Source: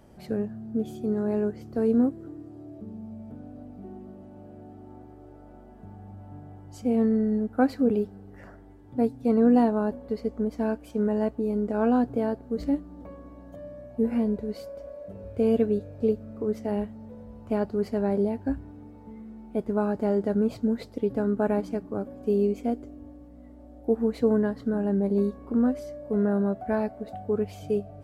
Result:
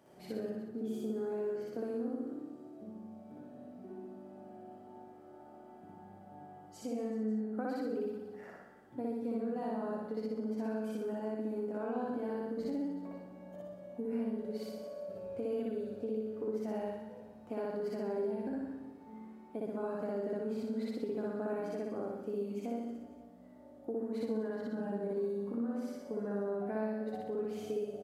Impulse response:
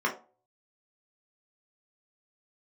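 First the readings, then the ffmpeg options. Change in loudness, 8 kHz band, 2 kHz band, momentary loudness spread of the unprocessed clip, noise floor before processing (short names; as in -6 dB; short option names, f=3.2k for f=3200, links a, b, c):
-11.5 dB, n/a, -9.5 dB, 21 LU, -48 dBFS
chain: -filter_complex "[0:a]bandreject=f=50:t=h:w=6,bandreject=f=100:t=h:w=6,bandreject=f=150:t=h:w=6,bandreject=f=200:t=h:w=6,bandreject=f=250:t=h:w=6,asplit=2[a][b];[b]aecho=0:1:60|120|180|240|300|360|420:0.596|0.322|0.174|0.0938|0.0506|0.0274|0.0148[c];[a][c]amix=inputs=2:normalize=0,acompressor=threshold=-29dB:ratio=6,highpass=170,asplit=2[d][e];[e]aecho=0:1:60|138|239.4|371.2|542.6:0.631|0.398|0.251|0.158|0.1[f];[d][f]amix=inputs=2:normalize=0,volume=-7.5dB"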